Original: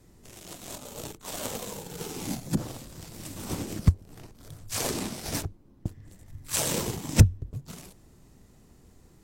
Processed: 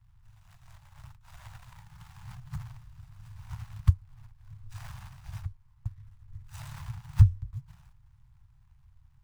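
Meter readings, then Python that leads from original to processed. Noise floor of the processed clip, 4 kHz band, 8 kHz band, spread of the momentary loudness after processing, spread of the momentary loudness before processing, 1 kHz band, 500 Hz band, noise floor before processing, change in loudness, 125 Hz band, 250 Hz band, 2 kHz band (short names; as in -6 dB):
-61 dBFS, under -15 dB, under -25 dB, 27 LU, 20 LU, -12.0 dB, under -30 dB, -57 dBFS, -1.5 dB, -1.0 dB, under -15 dB, -13.5 dB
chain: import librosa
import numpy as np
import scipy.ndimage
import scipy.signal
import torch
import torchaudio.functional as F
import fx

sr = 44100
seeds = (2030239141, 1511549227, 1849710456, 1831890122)

y = scipy.signal.medfilt(x, 41)
y = scipy.signal.sosfilt(scipy.signal.ellip(3, 1.0, 60, [120.0, 960.0], 'bandstop', fs=sr, output='sos'), y)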